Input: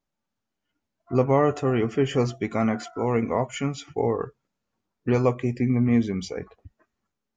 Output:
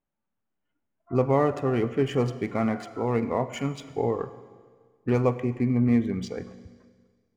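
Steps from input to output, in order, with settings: local Wiener filter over 9 samples; Schroeder reverb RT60 1.7 s, combs from 33 ms, DRR 13 dB; trim -2 dB

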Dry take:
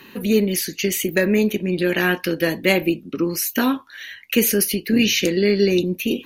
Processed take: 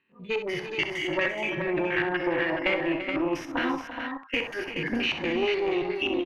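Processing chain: spectrogram pixelated in time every 100 ms; gate -34 dBFS, range -11 dB; spectral noise reduction 25 dB; dynamic bell 180 Hz, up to -6 dB, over -36 dBFS, Q 0.76; compression, threshold -29 dBFS, peak gain reduction 13 dB; one-sided clip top -33 dBFS; LFO low-pass square 4.2 Hz 930–2400 Hz; multi-tap echo 66/251/340/424 ms -9.5/-17.5/-11.5/-6.5 dB; trim +4.5 dB

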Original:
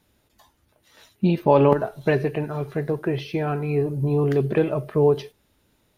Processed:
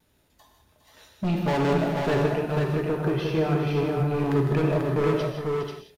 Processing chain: overload inside the chain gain 21 dB; multi-tap echo 154/412/488 ms -10.5/-10/-4 dB; gated-style reverb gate 210 ms flat, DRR 3.5 dB; vibrato 0.36 Hz 11 cents; trim -2 dB

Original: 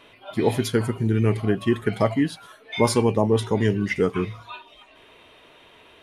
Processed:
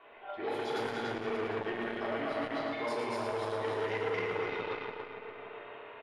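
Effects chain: backward echo that repeats 144 ms, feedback 68%, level -1 dB; three-band isolator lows -19 dB, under 440 Hz, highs -14 dB, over 4.2 kHz; hum notches 50/100/150/200/250/300/350 Hz; simulated room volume 710 m³, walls furnished, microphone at 3.4 m; level-controlled noise filter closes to 1.5 kHz, open at -15.5 dBFS; peaking EQ 1.2 kHz -3 dB 0.22 oct; reverse; compression 6:1, threshold -29 dBFS, peak gain reduction 15.5 dB; reverse; feedback delay 112 ms, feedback 57%, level -5 dB; transformer saturation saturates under 1.1 kHz; trim -2.5 dB

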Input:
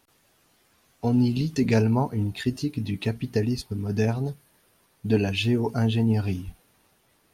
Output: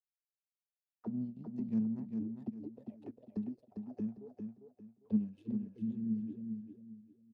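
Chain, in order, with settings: crossover distortion -45 dBFS; power-law waveshaper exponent 2; auto-wah 210–1300 Hz, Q 11, down, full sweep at -28.5 dBFS; pre-emphasis filter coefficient 0.8; spectral replace 5.36–6.34 s, 480–1800 Hz before; bass shelf 150 Hz +10.5 dB; on a send: feedback delay 401 ms, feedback 29%, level -6 dB; on the sum: trim +13 dB

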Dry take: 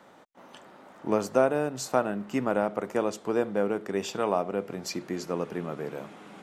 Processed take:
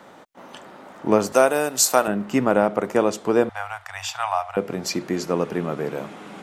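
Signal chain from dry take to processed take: 1.32–2.08 s: RIAA curve recording; 3.49–4.57 s: Chebyshev band-stop 100–730 Hz, order 4; trim +8 dB

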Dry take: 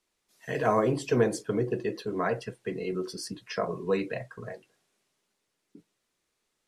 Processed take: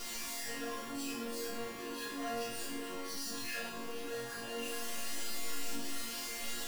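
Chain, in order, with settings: one-bit comparator; band-stop 2.2 kHz, Q 16; chord resonator A#3 minor, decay 0.72 s; reverse echo 39 ms -5 dB; trim +11 dB

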